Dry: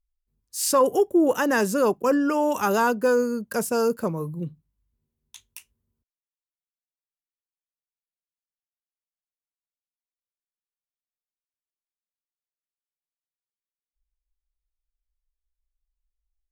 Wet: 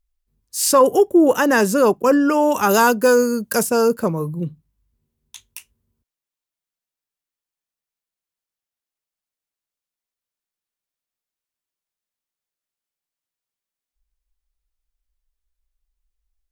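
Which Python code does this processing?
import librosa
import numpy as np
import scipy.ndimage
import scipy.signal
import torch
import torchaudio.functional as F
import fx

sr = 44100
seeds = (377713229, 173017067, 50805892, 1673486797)

y = fx.high_shelf(x, sr, hz=3400.0, db=8.5, at=(2.69, 3.63))
y = y * librosa.db_to_amplitude(6.0)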